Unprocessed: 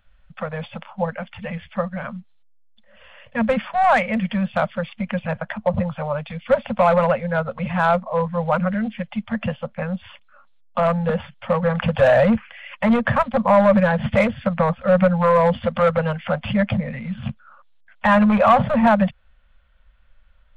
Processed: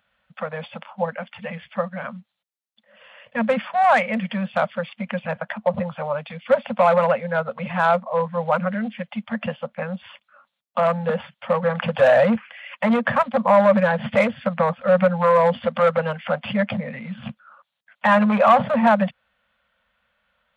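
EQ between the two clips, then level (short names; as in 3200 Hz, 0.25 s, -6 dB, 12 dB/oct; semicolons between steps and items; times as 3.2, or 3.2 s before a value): HPF 210 Hz 12 dB/oct; 0.0 dB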